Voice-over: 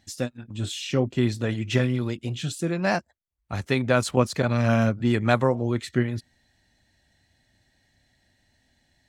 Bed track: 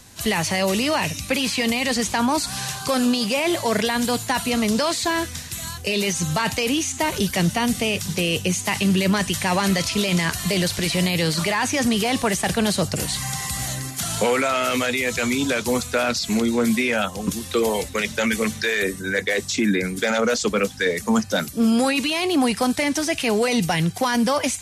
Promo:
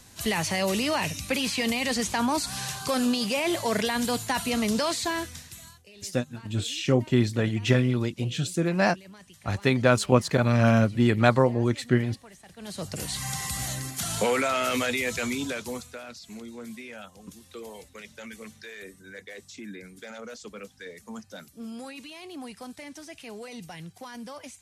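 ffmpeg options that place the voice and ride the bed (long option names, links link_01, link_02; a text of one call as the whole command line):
ffmpeg -i stem1.wav -i stem2.wav -filter_complex "[0:a]adelay=5950,volume=1dB[link_01];[1:a]volume=19dB,afade=type=out:start_time=4.95:duration=0.91:silence=0.0668344,afade=type=in:start_time=12.56:duration=0.75:silence=0.0630957,afade=type=out:start_time=14.95:duration=1.05:silence=0.158489[link_02];[link_01][link_02]amix=inputs=2:normalize=0" out.wav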